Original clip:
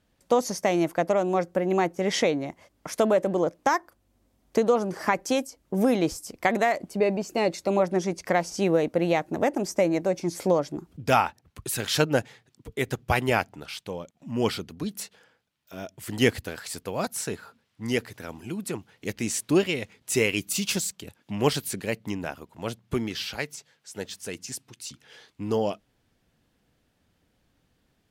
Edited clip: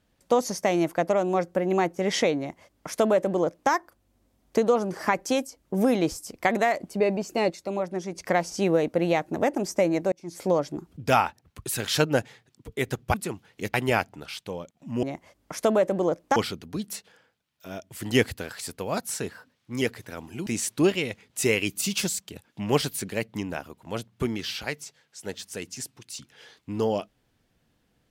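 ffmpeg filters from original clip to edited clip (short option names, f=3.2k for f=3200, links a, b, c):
-filter_complex "[0:a]asplit=11[a][b][c][d][e][f][g][h][i][j][k];[a]atrim=end=7.502[l];[b]atrim=start=7.498:end=8.152,asetpts=PTS-STARTPTS,volume=-6dB[m];[c]atrim=start=8.148:end=10.12,asetpts=PTS-STARTPTS,afade=t=out:st=1.968:d=0.004:c=hsin[n];[d]atrim=start=10.12:end=13.142,asetpts=PTS-STARTPTS,afade=t=in:d=0.45[o];[e]atrim=start=18.578:end=19.182[p];[f]atrim=start=13.138:end=14.432[q];[g]atrim=start=2.378:end=3.712[r];[h]atrim=start=14.428:end=17.384[s];[i]atrim=start=17.38:end=17.93,asetpts=PTS-STARTPTS,asetrate=48069,aresample=44100,atrim=end_sample=22252,asetpts=PTS-STARTPTS[t];[j]atrim=start=17.926:end=18.582[u];[k]atrim=start=19.178[v];[l][m]acrossfade=d=0.004:c1=hsin:c2=hsin[w];[n][o]concat=n=2:v=0:a=1[x];[w][x]acrossfade=d=0.004:c1=hsin:c2=hsin[y];[y][p]acrossfade=d=0.004:c1=hsin:c2=hsin[z];[z][q]acrossfade=d=0.004:c1=hsin:c2=hsin[aa];[aa][r]acrossfade=d=0.004:c1=hsin:c2=hsin[ab];[ab][s]acrossfade=d=0.004:c1=hsin:c2=hsin[ac];[ac][t]acrossfade=d=0.004:c1=hsin:c2=hsin[ad];[ad][u]acrossfade=d=0.004:c1=hsin:c2=hsin[ae];[ae][v]acrossfade=d=0.004:c1=hsin:c2=hsin"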